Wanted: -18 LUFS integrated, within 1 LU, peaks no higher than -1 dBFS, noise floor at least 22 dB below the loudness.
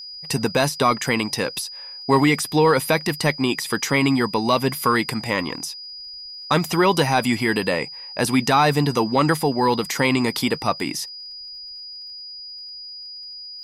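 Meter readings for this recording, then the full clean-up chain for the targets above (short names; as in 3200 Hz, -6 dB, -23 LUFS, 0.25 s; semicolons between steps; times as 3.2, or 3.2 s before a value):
ticks 54/s; steady tone 4900 Hz; tone level -34 dBFS; loudness -20.5 LUFS; peak -6.0 dBFS; loudness target -18.0 LUFS
-> de-click; notch 4900 Hz, Q 30; gain +2.5 dB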